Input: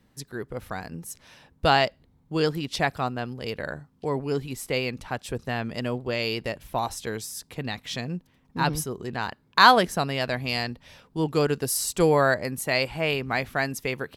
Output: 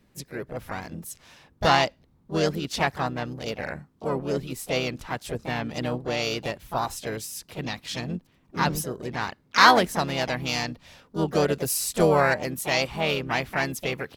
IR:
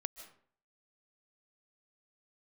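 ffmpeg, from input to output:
-filter_complex "[0:a]asplit=4[link_01][link_02][link_03][link_04];[link_02]asetrate=22050,aresample=44100,atempo=2,volume=-18dB[link_05];[link_03]asetrate=55563,aresample=44100,atempo=0.793701,volume=-6dB[link_06];[link_04]asetrate=66075,aresample=44100,atempo=0.66742,volume=-13dB[link_07];[link_01][link_05][link_06][link_07]amix=inputs=4:normalize=0,volume=-1dB"

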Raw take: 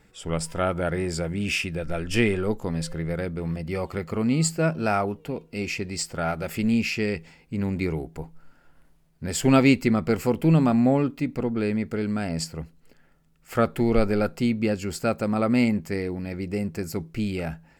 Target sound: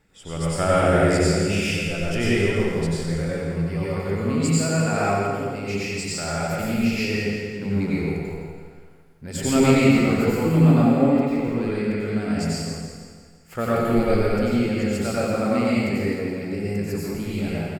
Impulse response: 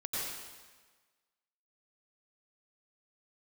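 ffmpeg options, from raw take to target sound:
-filter_complex "[0:a]asettb=1/sr,asplit=3[link_01][link_02][link_03];[link_01]atrim=end=0.574[link_04];[link_02]atrim=start=0.57:end=1.21,asetpts=PTS-STARTPTS,afade=type=in:duration=0.004:curve=qsin,afade=type=out:start_time=0.636:duration=0.004:curve=qsin,acontrast=57[link_05];[link_03]atrim=start=1.206[link_06];[link_04][link_05]acrossfade=duration=0.004:curve1=hsin:curve2=qsin[link_07];[link_07][link_06]acrossfade=duration=0.004:curve1=qsin:curve2=hsin,aecho=1:1:167|334|501|668|835|1002:0.355|0.177|0.0887|0.0444|0.0222|0.0111[link_08];[1:a]atrim=start_sample=2205[link_09];[link_08][link_09]afir=irnorm=-1:irlink=0,volume=-2dB"

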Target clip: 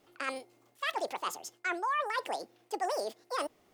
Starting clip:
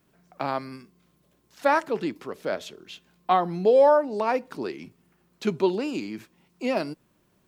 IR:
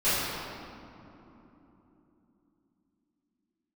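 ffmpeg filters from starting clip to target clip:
-af "areverse,acompressor=threshold=-30dB:ratio=6,areverse,asetrate=88200,aresample=44100"

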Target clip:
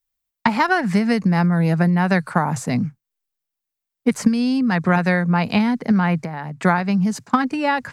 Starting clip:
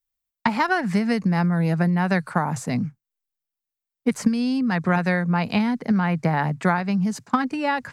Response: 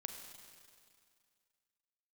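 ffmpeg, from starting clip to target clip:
-filter_complex "[0:a]asettb=1/sr,asplit=3[link_01][link_02][link_03];[link_01]atrim=end=6.214[link_04];[link_02]atrim=start=6.21:end=6.61,asetpts=PTS-STARTPTS,afade=type=in:duration=0.004:curve=qsin,afade=type=out:start_time=0.396:duration=0.004:curve=qsin,acompressor=threshold=-35dB:ratio=2.5[link_05];[link_03]atrim=start=6.606[link_06];[link_04][link_05]acrossfade=duration=0.004:curve1=hsin:curve2=qsin[link_07];[link_07][link_06]acrossfade=duration=0.004:curve1=qsin:curve2=hsin,volume=3.5dB"

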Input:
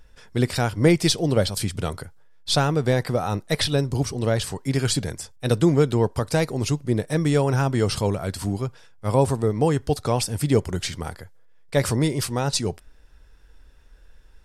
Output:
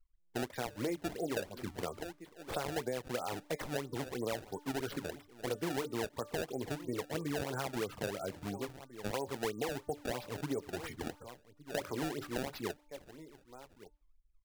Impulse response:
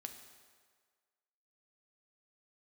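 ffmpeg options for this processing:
-filter_complex "[0:a]flanger=delay=6.8:depth=4.9:regen=-49:speed=0.29:shape=triangular,afftfilt=real='re*gte(hypot(re,im),0.0224)':imag='im*gte(hypot(re,im),0.0224)':win_size=1024:overlap=0.75,acrossover=split=260 2300:gain=0.158 1 0.112[link_01][link_02][link_03];[link_01][link_02][link_03]amix=inputs=3:normalize=0,bandreject=frequency=294.7:width_type=h:width=4,bandreject=frequency=589.4:width_type=h:width=4,bandreject=frequency=884.1:width_type=h:width=4,bandreject=frequency=1178.8:width_type=h:width=4,bandreject=frequency=1473.5:width_type=h:width=4,bandreject=frequency=1768.2:width_type=h:width=4,bandreject=frequency=2062.9:width_type=h:width=4,bandreject=frequency=2357.6:width_type=h:width=4,bandreject=frequency=2652.3:width_type=h:width=4,bandreject=frequency=2947:width_type=h:width=4,bandreject=frequency=3241.7:width_type=h:width=4,bandreject=frequency=3536.4:width_type=h:width=4,bandreject=frequency=3831.1:width_type=h:width=4,bandreject=frequency=4125.8:width_type=h:width=4,bandreject=frequency=4420.5:width_type=h:width=4,bandreject=frequency=4715.2:width_type=h:width=4,bandreject=frequency=5009.9:width_type=h:width=4,bandreject=frequency=5304.6:width_type=h:width=4,bandreject=frequency=5599.3:width_type=h:width=4,bandreject=frequency=5894:width_type=h:width=4,bandreject=frequency=6188.7:width_type=h:width=4,bandreject=frequency=6483.4:width_type=h:width=4,bandreject=frequency=6778.1:width_type=h:width=4,bandreject=frequency=7072.8:width_type=h:width=4,bandreject=frequency=7367.5:width_type=h:width=4,bandreject=frequency=7662.2:width_type=h:width=4,bandreject=frequency=7956.9:width_type=h:width=4,bandreject=frequency=8251.6:width_type=h:width=4,bandreject=frequency=8546.3:width_type=h:width=4,bandreject=frequency=8841:width_type=h:width=4,bandreject=frequency=9135.7:width_type=h:width=4,bandreject=frequency=9430.4:width_type=h:width=4,bandreject=frequency=9725.1:width_type=h:width=4,bandreject=frequency=10019.8:width_type=h:width=4,asplit=2[link_04][link_05];[link_05]aecho=0:1:1164:0.0794[link_06];[link_04][link_06]amix=inputs=2:normalize=0,acontrast=58,alimiter=limit=-12.5dB:level=0:latency=1:release=254,acrusher=samples=24:mix=1:aa=0.000001:lfo=1:lforange=38.4:lforate=3,acompressor=threshold=-30dB:ratio=3,volume=-5.5dB"

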